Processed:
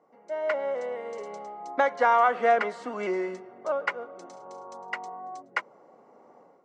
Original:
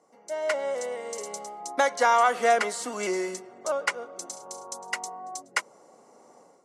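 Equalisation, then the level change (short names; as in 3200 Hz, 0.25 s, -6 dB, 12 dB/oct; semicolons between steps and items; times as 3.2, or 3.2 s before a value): LPF 2200 Hz 12 dB/oct; 0.0 dB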